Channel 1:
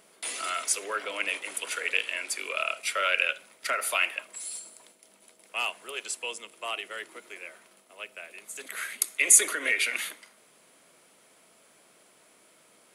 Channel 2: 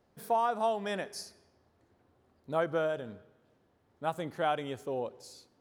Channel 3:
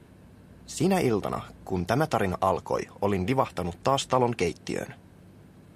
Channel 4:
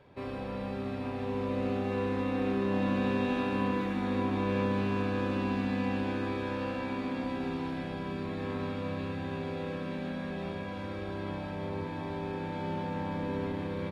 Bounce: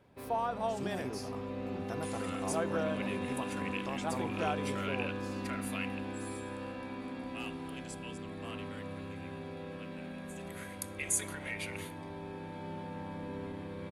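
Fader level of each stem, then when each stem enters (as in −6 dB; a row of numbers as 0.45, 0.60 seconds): −14.5, −5.0, −17.5, −7.5 decibels; 1.80, 0.00, 0.00, 0.00 seconds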